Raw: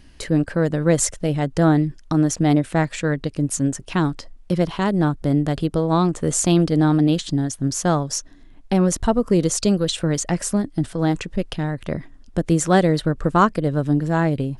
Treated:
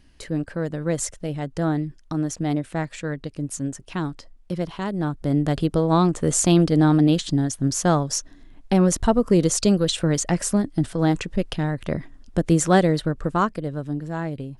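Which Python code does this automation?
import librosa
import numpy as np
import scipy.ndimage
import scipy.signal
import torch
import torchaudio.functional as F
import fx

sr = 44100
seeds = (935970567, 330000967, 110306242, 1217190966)

y = fx.gain(x, sr, db=fx.line((4.97, -7.0), (5.52, 0.0), (12.64, 0.0), (13.89, -9.0)))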